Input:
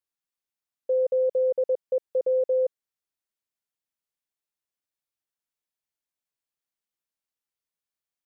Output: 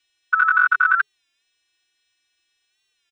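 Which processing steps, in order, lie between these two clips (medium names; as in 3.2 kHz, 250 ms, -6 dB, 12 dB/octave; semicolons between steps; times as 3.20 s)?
partials quantised in pitch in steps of 2 st; resonant low shelf 520 Hz -8 dB, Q 1.5; hum notches 50/100/150 Hz; comb 7.1 ms, depth 87%; wide varispeed 2.65×; distance through air 150 m; loudness maximiser +32.5 dB; warped record 33 1/3 rpm, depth 100 cents; trim -6 dB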